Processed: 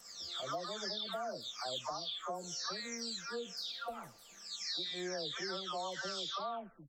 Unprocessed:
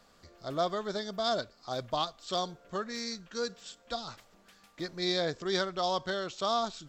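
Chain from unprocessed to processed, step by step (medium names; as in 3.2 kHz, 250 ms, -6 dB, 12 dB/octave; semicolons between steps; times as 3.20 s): delay that grows with frequency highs early, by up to 603 ms; tilt EQ +2 dB/octave; compression, threshold -37 dBFS, peak gain reduction 10.5 dB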